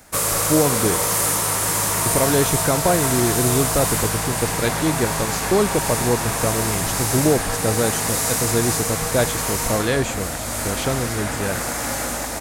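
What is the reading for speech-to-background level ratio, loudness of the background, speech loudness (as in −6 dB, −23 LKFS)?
−2.0 dB, −21.0 LKFS, −23.0 LKFS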